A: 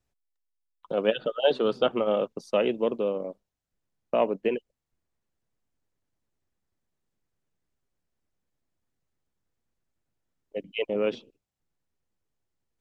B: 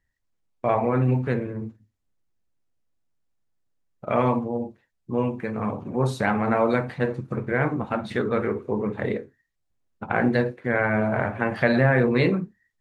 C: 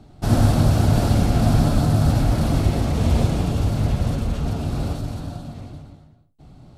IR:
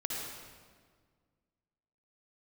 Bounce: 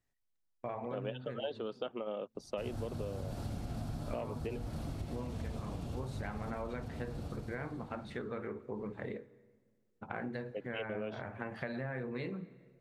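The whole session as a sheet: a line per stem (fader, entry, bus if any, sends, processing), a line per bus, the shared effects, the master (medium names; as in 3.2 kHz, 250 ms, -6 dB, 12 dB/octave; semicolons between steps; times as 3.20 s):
-5.0 dB, 0.00 s, no send, none
-13.5 dB, 0.00 s, send -23.5 dB, none
-16.5 dB, 2.35 s, no send, none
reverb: on, RT60 1.7 s, pre-delay 52 ms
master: compression, threshold -36 dBFS, peak gain reduction 14 dB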